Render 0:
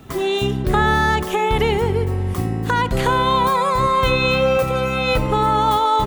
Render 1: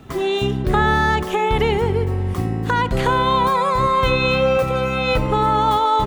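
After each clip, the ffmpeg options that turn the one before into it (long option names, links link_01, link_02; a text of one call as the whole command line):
ffmpeg -i in.wav -af "highshelf=frequency=7400:gain=-8" out.wav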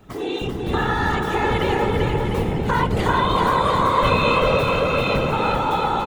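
ffmpeg -i in.wav -filter_complex "[0:a]dynaudnorm=framelen=240:gausssize=11:maxgain=6.5dB,afftfilt=real='hypot(re,im)*cos(2*PI*random(0))':imag='hypot(re,im)*sin(2*PI*random(1))':win_size=512:overlap=0.75,asplit=2[link_01][link_02];[link_02]aecho=0:1:390|702|951.6|1151|1311:0.631|0.398|0.251|0.158|0.1[link_03];[link_01][link_03]amix=inputs=2:normalize=0" out.wav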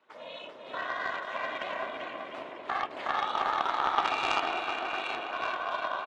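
ffmpeg -i in.wav -af "aeval=exprs='val(0)*sin(2*PI*190*n/s)':channel_layout=same,highpass=740,lowpass=3600,aeval=exprs='0.335*(cos(1*acos(clip(val(0)/0.335,-1,1)))-cos(1*PI/2))+0.0668*(cos(3*acos(clip(val(0)/0.335,-1,1)))-cos(3*PI/2))':channel_layout=same" out.wav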